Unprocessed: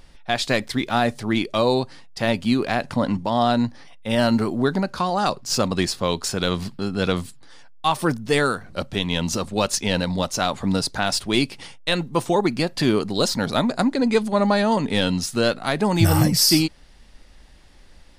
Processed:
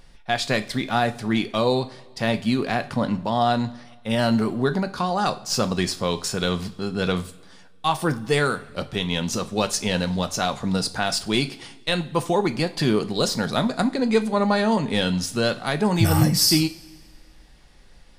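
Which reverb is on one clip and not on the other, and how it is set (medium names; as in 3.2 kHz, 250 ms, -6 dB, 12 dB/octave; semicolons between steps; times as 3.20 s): two-slope reverb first 0.33 s, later 1.7 s, from -18 dB, DRR 8.5 dB; trim -2 dB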